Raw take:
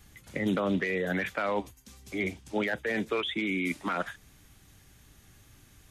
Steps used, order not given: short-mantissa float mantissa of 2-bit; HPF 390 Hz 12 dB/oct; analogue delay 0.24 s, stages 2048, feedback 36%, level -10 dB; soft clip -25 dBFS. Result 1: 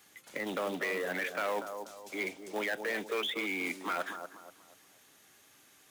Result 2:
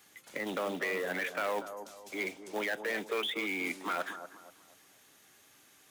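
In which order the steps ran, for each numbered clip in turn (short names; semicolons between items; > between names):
analogue delay > soft clip > HPF > short-mantissa float; soft clip > HPF > short-mantissa float > analogue delay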